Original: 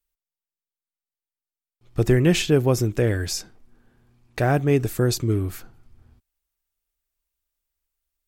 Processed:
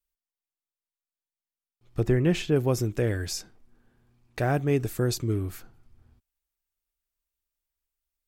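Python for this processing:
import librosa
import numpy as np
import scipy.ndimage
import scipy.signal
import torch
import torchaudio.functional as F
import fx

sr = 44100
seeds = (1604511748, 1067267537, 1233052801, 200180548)

y = fx.high_shelf(x, sr, hz=3500.0, db=-9.5, at=(2.0, 2.56))
y = y * librosa.db_to_amplitude(-5.0)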